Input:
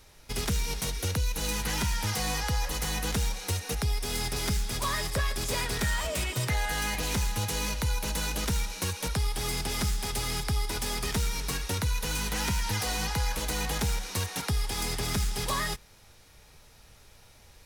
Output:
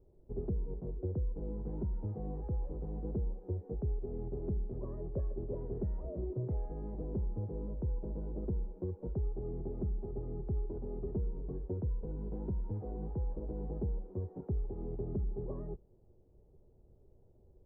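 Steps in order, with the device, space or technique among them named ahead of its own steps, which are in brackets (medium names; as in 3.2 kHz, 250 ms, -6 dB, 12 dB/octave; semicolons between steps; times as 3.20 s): under water (low-pass 560 Hz 24 dB/octave; peaking EQ 370 Hz +11 dB 0.24 oct); trim -6 dB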